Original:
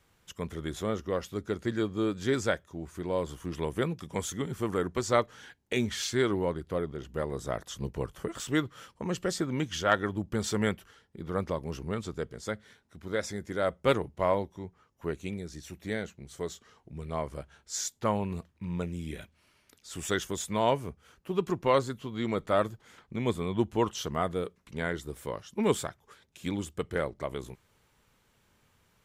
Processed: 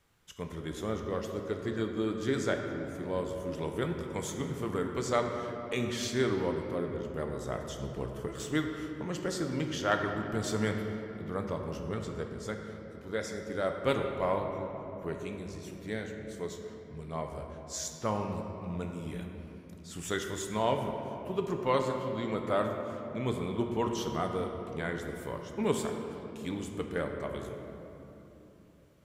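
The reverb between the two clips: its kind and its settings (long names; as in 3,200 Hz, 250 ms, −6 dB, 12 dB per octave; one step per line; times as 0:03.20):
rectangular room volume 190 cubic metres, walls hard, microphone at 0.32 metres
level −4 dB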